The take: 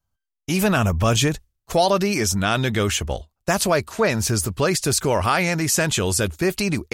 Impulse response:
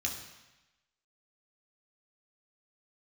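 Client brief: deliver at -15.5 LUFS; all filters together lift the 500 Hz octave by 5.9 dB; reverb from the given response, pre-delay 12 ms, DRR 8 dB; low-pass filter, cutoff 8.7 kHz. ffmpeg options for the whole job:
-filter_complex "[0:a]lowpass=8700,equalizer=f=500:t=o:g=7.5,asplit=2[s0][s1];[1:a]atrim=start_sample=2205,adelay=12[s2];[s1][s2]afir=irnorm=-1:irlink=0,volume=0.266[s3];[s0][s3]amix=inputs=2:normalize=0,volume=1.26"

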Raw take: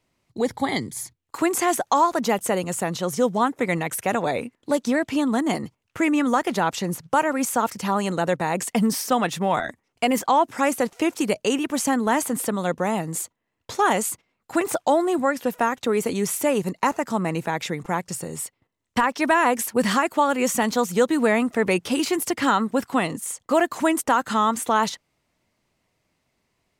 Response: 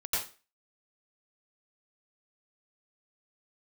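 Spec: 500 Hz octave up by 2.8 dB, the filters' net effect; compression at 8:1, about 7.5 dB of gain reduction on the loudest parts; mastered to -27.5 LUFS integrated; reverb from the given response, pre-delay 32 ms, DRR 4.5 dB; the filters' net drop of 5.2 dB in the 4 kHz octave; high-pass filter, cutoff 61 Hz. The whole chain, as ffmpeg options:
-filter_complex "[0:a]highpass=61,equalizer=f=500:t=o:g=3.5,equalizer=f=4000:t=o:g=-7.5,acompressor=threshold=0.1:ratio=8,asplit=2[s0][s1];[1:a]atrim=start_sample=2205,adelay=32[s2];[s1][s2]afir=irnorm=-1:irlink=0,volume=0.282[s3];[s0][s3]amix=inputs=2:normalize=0,volume=0.794"

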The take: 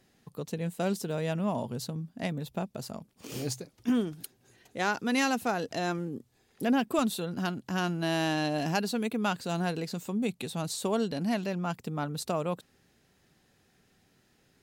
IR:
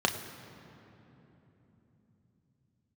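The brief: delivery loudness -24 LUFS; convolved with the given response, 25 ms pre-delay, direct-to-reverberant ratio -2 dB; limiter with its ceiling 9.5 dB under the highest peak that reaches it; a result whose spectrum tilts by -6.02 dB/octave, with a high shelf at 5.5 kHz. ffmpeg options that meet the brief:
-filter_complex "[0:a]highshelf=f=5500:g=-3.5,alimiter=level_in=1.06:limit=0.0631:level=0:latency=1,volume=0.944,asplit=2[s0][s1];[1:a]atrim=start_sample=2205,adelay=25[s2];[s1][s2]afir=irnorm=-1:irlink=0,volume=0.355[s3];[s0][s3]amix=inputs=2:normalize=0,volume=2"

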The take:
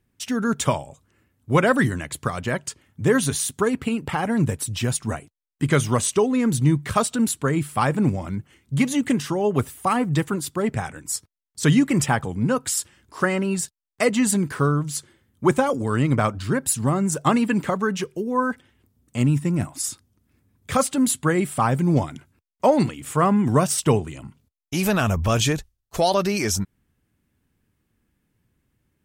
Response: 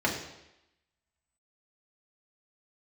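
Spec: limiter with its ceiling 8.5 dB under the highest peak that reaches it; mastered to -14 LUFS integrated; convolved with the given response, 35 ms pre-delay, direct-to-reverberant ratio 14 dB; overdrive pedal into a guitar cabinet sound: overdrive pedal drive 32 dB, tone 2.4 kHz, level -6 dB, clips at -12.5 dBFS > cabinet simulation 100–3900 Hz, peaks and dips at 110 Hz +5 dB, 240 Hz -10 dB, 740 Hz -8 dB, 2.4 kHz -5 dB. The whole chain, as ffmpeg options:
-filter_complex "[0:a]alimiter=limit=0.178:level=0:latency=1,asplit=2[s0][s1];[1:a]atrim=start_sample=2205,adelay=35[s2];[s1][s2]afir=irnorm=-1:irlink=0,volume=0.0531[s3];[s0][s3]amix=inputs=2:normalize=0,asplit=2[s4][s5];[s5]highpass=f=720:p=1,volume=39.8,asoftclip=type=tanh:threshold=0.237[s6];[s4][s6]amix=inputs=2:normalize=0,lowpass=f=2400:p=1,volume=0.501,highpass=100,equalizer=f=110:t=q:w=4:g=5,equalizer=f=240:t=q:w=4:g=-10,equalizer=f=740:t=q:w=4:g=-8,equalizer=f=2400:t=q:w=4:g=-5,lowpass=f=3900:w=0.5412,lowpass=f=3900:w=1.3066,volume=2.82"

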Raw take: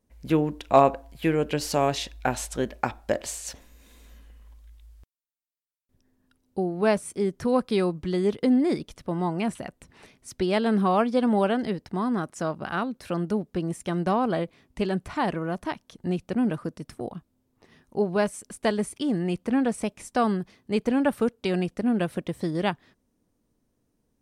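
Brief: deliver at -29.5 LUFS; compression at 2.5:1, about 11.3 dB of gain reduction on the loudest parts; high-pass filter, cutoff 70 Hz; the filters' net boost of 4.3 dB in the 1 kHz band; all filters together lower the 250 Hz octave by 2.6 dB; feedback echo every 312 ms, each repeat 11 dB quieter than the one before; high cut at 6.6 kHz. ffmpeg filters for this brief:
-af "highpass=70,lowpass=6600,equalizer=f=250:t=o:g=-3.5,equalizer=f=1000:t=o:g=6,acompressor=threshold=0.0501:ratio=2.5,aecho=1:1:312|624|936:0.282|0.0789|0.0221,volume=1.12"

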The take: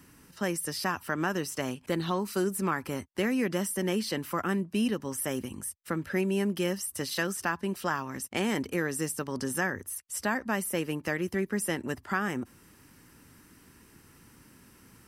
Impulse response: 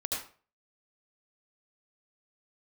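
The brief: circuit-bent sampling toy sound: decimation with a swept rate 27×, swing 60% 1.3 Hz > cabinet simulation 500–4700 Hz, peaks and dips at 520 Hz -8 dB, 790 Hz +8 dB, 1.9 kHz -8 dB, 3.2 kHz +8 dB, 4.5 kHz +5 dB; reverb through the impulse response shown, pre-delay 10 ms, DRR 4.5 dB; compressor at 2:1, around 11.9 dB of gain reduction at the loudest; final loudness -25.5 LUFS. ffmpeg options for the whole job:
-filter_complex "[0:a]acompressor=threshold=0.00447:ratio=2,asplit=2[s0][s1];[1:a]atrim=start_sample=2205,adelay=10[s2];[s1][s2]afir=irnorm=-1:irlink=0,volume=0.376[s3];[s0][s3]amix=inputs=2:normalize=0,acrusher=samples=27:mix=1:aa=0.000001:lfo=1:lforange=16.2:lforate=1.3,highpass=500,equalizer=f=520:t=q:w=4:g=-8,equalizer=f=790:t=q:w=4:g=8,equalizer=f=1900:t=q:w=4:g=-8,equalizer=f=3200:t=q:w=4:g=8,equalizer=f=4500:t=q:w=4:g=5,lowpass=f=4700:w=0.5412,lowpass=f=4700:w=1.3066,volume=8.41"

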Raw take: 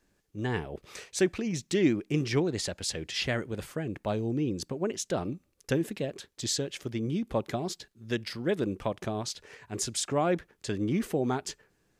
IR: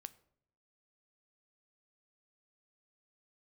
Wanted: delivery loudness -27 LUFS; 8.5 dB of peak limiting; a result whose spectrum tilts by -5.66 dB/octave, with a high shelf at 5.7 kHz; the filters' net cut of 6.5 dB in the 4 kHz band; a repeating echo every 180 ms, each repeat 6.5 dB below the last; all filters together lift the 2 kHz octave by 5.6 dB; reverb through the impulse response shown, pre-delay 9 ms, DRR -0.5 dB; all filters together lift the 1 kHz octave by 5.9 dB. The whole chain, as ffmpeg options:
-filter_complex "[0:a]equalizer=f=1000:t=o:g=7,equalizer=f=2000:t=o:g=7.5,equalizer=f=4000:t=o:g=-8,highshelf=f=5700:g=-8,alimiter=limit=0.106:level=0:latency=1,aecho=1:1:180|360|540|720|900|1080:0.473|0.222|0.105|0.0491|0.0231|0.0109,asplit=2[s0][s1];[1:a]atrim=start_sample=2205,adelay=9[s2];[s1][s2]afir=irnorm=-1:irlink=0,volume=2.11[s3];[s0][s3]amix=inputs=2:normalize=0,volume=1.12"

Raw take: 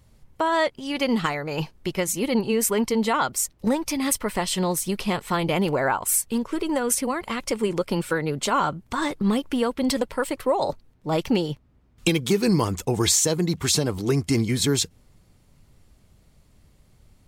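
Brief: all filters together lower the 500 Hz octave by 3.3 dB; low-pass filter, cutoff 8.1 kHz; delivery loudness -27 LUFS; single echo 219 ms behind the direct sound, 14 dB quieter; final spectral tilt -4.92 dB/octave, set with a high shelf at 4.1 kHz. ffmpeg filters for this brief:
-af "lowpass=8100,equalizer=f=500:t=o:g=-4,highshelf=f=4100:g=-7,aecho=1:1:219:0.2,volume=0.891"

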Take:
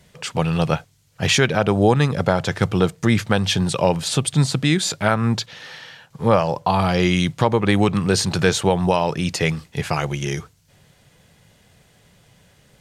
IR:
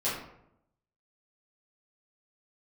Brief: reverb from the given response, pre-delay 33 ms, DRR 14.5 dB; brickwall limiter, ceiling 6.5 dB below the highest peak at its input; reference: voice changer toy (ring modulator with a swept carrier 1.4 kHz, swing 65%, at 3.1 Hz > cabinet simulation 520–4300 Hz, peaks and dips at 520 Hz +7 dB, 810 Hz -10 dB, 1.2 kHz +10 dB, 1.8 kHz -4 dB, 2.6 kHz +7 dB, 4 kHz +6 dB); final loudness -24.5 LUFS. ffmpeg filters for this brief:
-filter_complex "[0:a]alimiter=limit=0.422:level=0:latency=1,asplit=2[s0][s1];[1:a]atrim=start_sample=2205,adelay=33[s2];[s1][s2]afir=irnorm=-1:irlink=0,volume=0.0708[s3];[s0][s3]amix=inputs=2:normalize=0,aeval=exprs='val(0)*sin(2*PI*1400*n/s+1400*0.65/3.1*sin(2*PI*3.1*n/s))':c=same,highpass=520,equalizer=f=520:t=q:w=4:g=7,equalizer=f=810:t=q:w=4:g=-10,equalizer=f=1200:t=q:w=4:g=10,equalizer=f=1800:t=q:w=4:g=-4,equalizer=f=2600:t=q:w=4:g=7,equalizer=f=4000:t=q:w=4:g=6,lowpass=f=4300:w=0.5412,lowpass=f=4300:w=1.3066,volume=0.596"

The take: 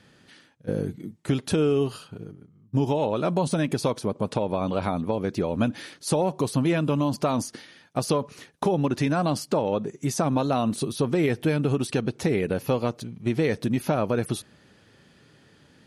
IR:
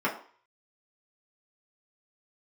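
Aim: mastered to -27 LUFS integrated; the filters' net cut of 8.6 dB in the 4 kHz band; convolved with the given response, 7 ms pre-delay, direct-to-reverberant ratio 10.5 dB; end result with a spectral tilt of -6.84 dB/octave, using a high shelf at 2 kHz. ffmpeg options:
-filter_complex "[0:a]highshelf=f=2000:g=-8,equalizer=f=4000:t=o:g=-3,asplit=2[s0][s1];[1:a]atrim=start_sample=2205,adelay=7[s2];[s1][s2]afir=irnorm=-1:irlink=0,volume=0.0794[s3];[s0][s3]amix=inputs=2:normalize=0,volume=0.891"

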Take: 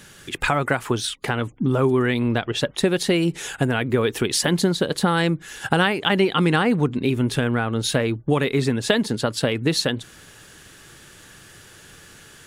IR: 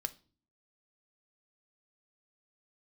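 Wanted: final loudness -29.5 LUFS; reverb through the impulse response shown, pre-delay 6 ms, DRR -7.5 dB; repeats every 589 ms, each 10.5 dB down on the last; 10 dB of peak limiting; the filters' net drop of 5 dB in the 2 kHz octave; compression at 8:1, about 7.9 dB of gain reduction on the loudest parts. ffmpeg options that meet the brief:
-filter_complex "[0:a]equalizer=f=2000:t=o:g=-7,acompressor=threshold=0.0708:ratio=8,alimiter=limit=0.0794:level=0:latency=1,aecho=1:1:589|1178|1767:0.299|0.0896|0.0269,asplit=2[s0][s1];[1:a]atrim=start_sample=2205,adelay=6[s2];[s1][s2]afir=irnorm=-1:irlink=0,volume=2.37[s3];[s0][s3]amix=inputs=2:normalize=0,volume=0.473"

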